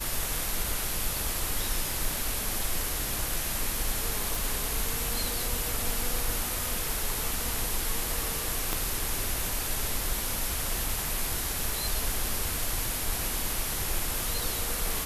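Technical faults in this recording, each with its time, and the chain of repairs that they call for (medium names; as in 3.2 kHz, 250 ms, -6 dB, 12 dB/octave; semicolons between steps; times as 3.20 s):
4.35 s: pop
8.73 s: pop -13 dBFS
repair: de-click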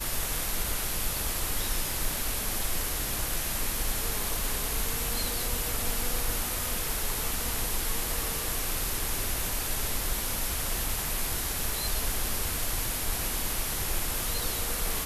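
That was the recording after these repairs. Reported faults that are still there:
8.73 s: pop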